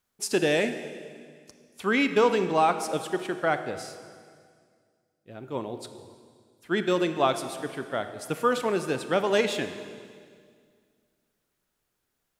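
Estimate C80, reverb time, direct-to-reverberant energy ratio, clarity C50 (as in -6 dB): 11.0 dB, 2.0 s, 9.0 dB, 9.5 dB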